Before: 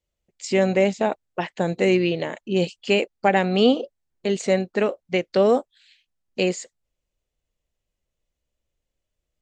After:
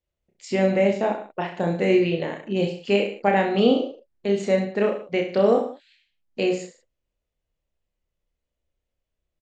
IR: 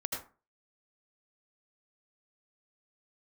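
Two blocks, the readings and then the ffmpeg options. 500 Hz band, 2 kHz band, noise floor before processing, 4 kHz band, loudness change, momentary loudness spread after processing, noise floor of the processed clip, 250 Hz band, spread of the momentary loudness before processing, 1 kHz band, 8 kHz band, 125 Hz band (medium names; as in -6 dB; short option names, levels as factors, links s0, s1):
0.0 dB, -2.0 dB, -82 dBFS, -3.5 dB, -0.5 dB, 11 LU, -83 dBFS, 0.0 dB, 11 LU, -1.0 dB, no reading, -0.5 dB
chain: -af "aemphasis=mode=reproduction:type=50kf,aecho=1:1:30|63|99.3|139.2|183.2:0.631|0.398|0.251|0.158|0.1,volume=0.75"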